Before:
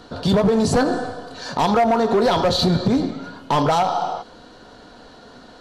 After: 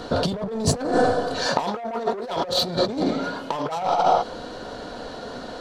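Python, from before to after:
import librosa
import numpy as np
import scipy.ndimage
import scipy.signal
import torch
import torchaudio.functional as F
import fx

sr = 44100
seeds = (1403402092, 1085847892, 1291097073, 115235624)

y = 10.0 ** (-14.5 / 20.0) * np.tanh(x / 10.0 ** (-14.5 / 20.0))
y = fx.peak_eq(y, sr, hz=550.0, db=5.5, octaves=0.78)
y = fx.over_compress(y, sr, threshold_db=-23.0, ratio=-0.5)
y = fx.low_shelf(y, sr, hz=160.0, db=-11.5, at=(1.47, 3.77))
y = y * librosa.db_to_amplitude(2.0)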